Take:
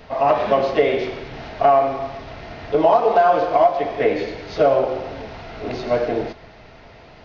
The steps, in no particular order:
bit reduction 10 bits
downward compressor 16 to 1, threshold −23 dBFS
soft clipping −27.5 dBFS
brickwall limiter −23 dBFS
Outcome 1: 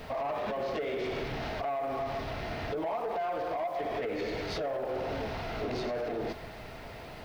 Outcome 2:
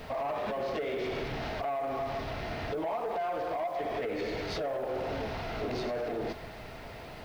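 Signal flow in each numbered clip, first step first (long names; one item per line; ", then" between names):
downward compressor, then bit reduction, then brickwall limiter, then soft clipping
downward compressor, then brickwall limiter, then bit reduction, then soft clipping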